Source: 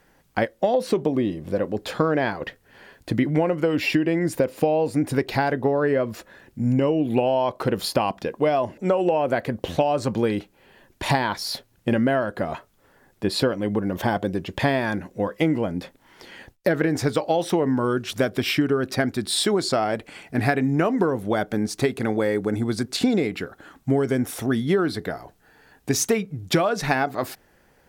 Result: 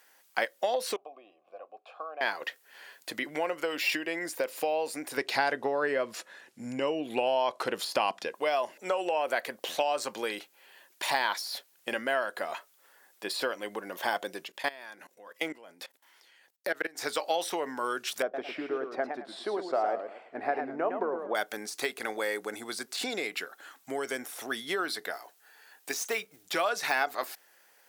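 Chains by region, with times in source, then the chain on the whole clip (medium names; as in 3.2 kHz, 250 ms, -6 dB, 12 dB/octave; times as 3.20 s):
0.96–2.21 s: vowel filter a + treble shelf 2.3 kHz -9 dB
5.17–8.34 s: low-pass 9.5 kHz + bass shelf 230 Hz +11.5 dB
14.44–16.99 s: high-pass 100 Hz + level held to a coarse grid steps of 20 dB
18.22–21.35 s: band-pass filter 630 Hz, Q 0.96 + tilt EQ -3.5 dB/octave + modulated delay 111 ms, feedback 32%, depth 174 cents, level -7 dB
25.13–26.45 s: block-companded coder 7-bit + bass shelf 120 Hz -10.5 dB
whole clip: tilt EQ +2.5 dB/octave; de-esser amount 55%; Bessel high-pass 600 Hz, order 2; trim -3 dB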